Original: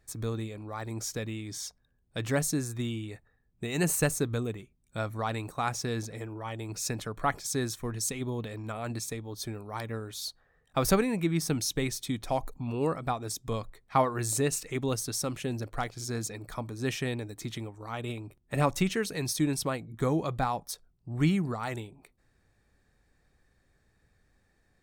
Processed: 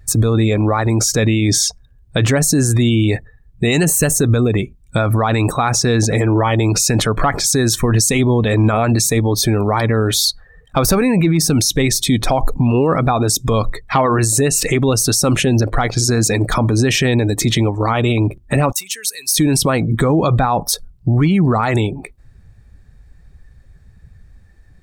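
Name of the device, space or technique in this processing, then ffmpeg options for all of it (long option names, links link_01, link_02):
loud club master: -filter_complex "[0:a]acompressor=threshold=-30dB:ratio=2.5,asoftclip=type=hard:threshold=-23dB,alimiter=level_in=33dB:limit=-1dB:release=50:level=0:latency=1,asettb=1/sr,asplit=3[link_01][link_02][link_03];[link_01]atrim=end=18.724[link_04];[link_02]atrim=start=18.72:end=19.34,asetpts=PTS-STARTPTS,afade=type=in:duration=0.004:curve=qsin,afade=type=out:start_time=0.616:duration=0.004:curve=qsin,aderivative[link_05];[link_03]atrim=start=19.336[link_06];[link_04][link_05]acrossfade=duration=0.004:curve1=hsin:curve2=qsin[link_07];[link_07][link_06]acrossfade=duration=0.004:curve1=qsin:curve2=hsin,afftdn=noise_reduction=18:noise_floor=-25,volume=-5.5dB"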